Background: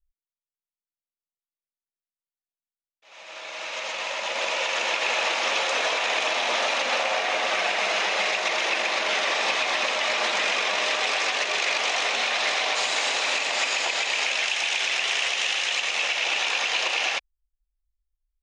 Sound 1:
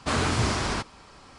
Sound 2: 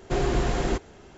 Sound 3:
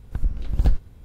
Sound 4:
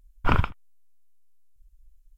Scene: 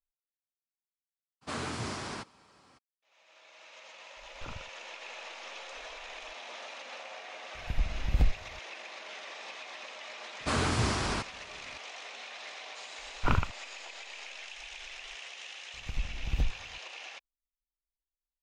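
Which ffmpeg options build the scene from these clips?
ffmpeg -i bed.wav -i cue0.wav -i cue1.wav -i cue2.wav -i cue3.wav -filter_complex "[1:a]asplit=2[link_01][link_02];[4:a]asplit=2[link_03][link_04];[3:a]asplit=2[link_05][link_06];[0:a]volume=-20dB[link_07];[link_01]highpass=110[link_08];[link_03]acompressor=threshold=-49dB:ratio=2:attack=48:release=605:knee=1:detection=rms[link_09];[link_08]atrim=end=1.38,asetpts=PTS-STARTPTS,volume=-10.5dB,afade=type=in:duration=0.02,afade=type=out:start_time=1.36:duration=0.02,adelay=1410[link_10];[link_09]atrim=end=2.17,asetpts=PTS-STARTPTS,volume=-6dB,afade=type=in:duration=0.004:curve=hsin,afade=type=out:start_time=2.166:duration=0.004:curve=hsin,adelay=183897S[link_11];[link_05]atrim=end=1.04,asetpts=PTS-STARTPTS,volume=-6.5dB,afade=type=in:duration=0.004:curve=hsin,afade=type=out:start_time=1.036:duration=0.004:curve=hsin,adelay=7550[link_12];[link_02]atrim=end=1.38,asetpts=PTS-STARTPTS,volume=-4dB,afade=type=in:duration=0.004:curve=hsin,afade=type=out:start_time=1.376:duration=0.004:curve=hsin,adelay=10400[link_13];[link_04]atrim=end=2.17,asetpts=PTS-STARTPTS,volume=-5.5dB,afade=type=in:duration=0.004:curve=hsin,afade=type=out:start_time=2.166:duration=0.004:curve=hsin,adelay=12990[link_14];[link_06]atrim=end=1.04,asetpts=PTS-STARTPTS,volume=-10.5dB,afade=type=in:duration=0.004:curve=hsin,afade=type=out:start_time=1.036:duration=0.004:curve=hsin,adelay=15740[link_15];[link_07][link_10][link_11][link_12][link_13][link_14][link_15]amix=inputs=7:normalize=0" out.wav

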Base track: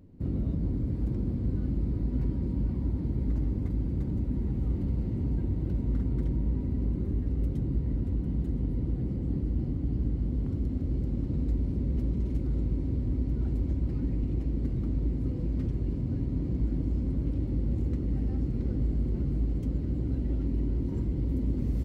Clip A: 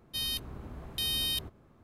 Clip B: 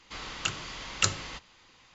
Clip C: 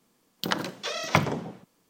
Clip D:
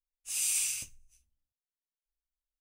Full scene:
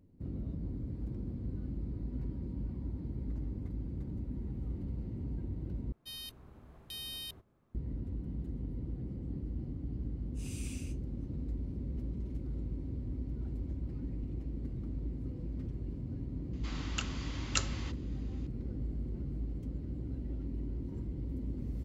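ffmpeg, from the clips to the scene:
ffmpeg -i bed.wav -i cue0.wav -i cue1.wav -i cue2.wav -i cue3.wav -filter_complex "[0:a]volume=-9.5dB[link_01];[4:a]lowpass=frequency=1700:poles=1[link_02];[link_01]asplit=2[link_03][link_04];[link_03]atrim=end=5.924[link_05];[1:a]atrim=end=1.83,asetpts=PTS-STARTPTS,volume=-11.5dB[link_06];[link_04]atrim=start=7.746[link_07];[link_02]atrim=end=2.6,asetpts=PTS-STARTPTS,volume=-8dB,afade=type=in:duration=0.004:curve=hsin,afade=type=out:start_time=2.596:duration=0.004:curve=hsin,adelay=10090[link_08];[2:a]atrim=end=1.94,asetpts=PTS-STARTPTS,volume=-7dB,afade=type=in:duration=0.004:curve=hsin,afade=type=out:start_time=1.936:duration=0.004:curve=hsin,adelay=16530[link_09];[link_05][link_06]acrossfade=duration=0.004:curve1=hsin:curve2=hsin[link_10];[link_10][link_07]acrossfade=duration=0.004:curve1=hsin:curve2=hsin[link_11];[link_11][link_08][link_09]amix=inputs=3:normalize=0" out.wav

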